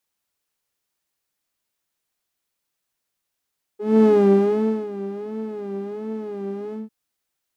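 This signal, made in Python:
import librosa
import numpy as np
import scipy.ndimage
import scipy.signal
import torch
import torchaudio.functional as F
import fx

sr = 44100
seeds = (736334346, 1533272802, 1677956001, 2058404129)

y = fx.sub_patch_vibrato(sr, seeds[0], note=68, wave='saw', wave2='saw', interval_st=-12, detune_cents=23, level2_db=-9.0, sub_db=-11, noise_db=-9.5, kind='bandpass', cutoff_hz=200.0, q=3.8, env_oct=1.0, env_decay_s=0.05, env_sustain_pct=50, attack_ms=251.0, decay_s=0.84, sustain_db=-17.0, release_s=0.16, note_s=2.94, lfo_hz=1.4, vibrato_cents=93)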